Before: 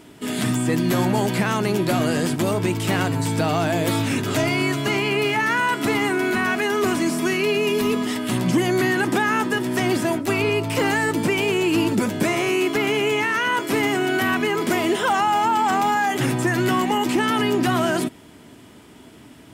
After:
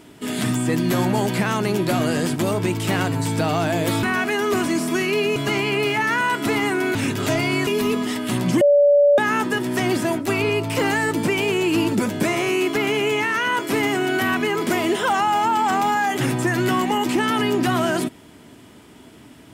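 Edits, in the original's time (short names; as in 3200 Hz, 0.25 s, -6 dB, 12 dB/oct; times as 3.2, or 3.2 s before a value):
4.03–4.75 swap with 6.34–7.67
8.61–9.18 bleep 576 Hz -10.5 dBFS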